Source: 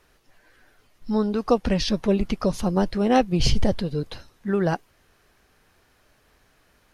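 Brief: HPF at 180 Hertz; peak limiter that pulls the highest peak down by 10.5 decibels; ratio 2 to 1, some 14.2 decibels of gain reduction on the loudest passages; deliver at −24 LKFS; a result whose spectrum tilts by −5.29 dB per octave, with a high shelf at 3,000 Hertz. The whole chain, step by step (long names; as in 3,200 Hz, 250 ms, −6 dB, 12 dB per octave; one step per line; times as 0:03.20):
high-pass filter 180 Hz
high-shelf EQ 3,000 Hz −8.5 dB
downward compressor 2 to 1, threshold −41 dBFS
level +17 dB
brickwall limiter −14 dBFS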